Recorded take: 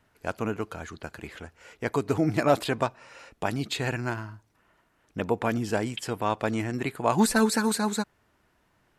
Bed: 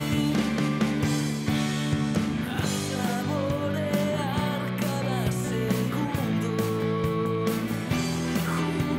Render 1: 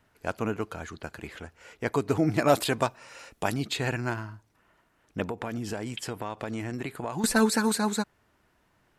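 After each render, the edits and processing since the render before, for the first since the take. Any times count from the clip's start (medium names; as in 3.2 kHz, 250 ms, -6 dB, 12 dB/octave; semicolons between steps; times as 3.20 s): 2.45–3.54 s: treble shelf 5.3 kHz +9.5 dB; 5.23–7.24 s: compression 5:1, threshold -29 dBFS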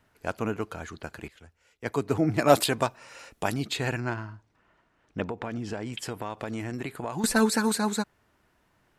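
1.28–2.66 s: three bands expanded up and down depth 70%; 4.00–5.93 s: distance through air 75 m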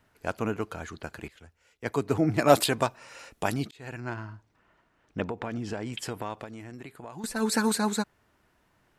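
3.71–4.33 s: fade in; 6.34–7.53 s: dip -9 dB, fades 0.14 s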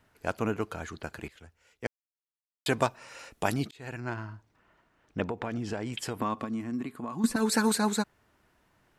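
1.87–2.66 s: mute; 6.19–7.36 s: small resonant body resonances 240/1100 Hz, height 14 dB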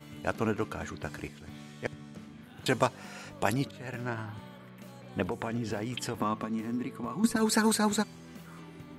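add bed -21 dB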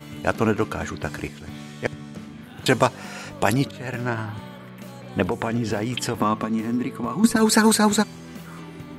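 trim +9 dB; peak limiter -2 dBFS, peak gain reduction 2 dB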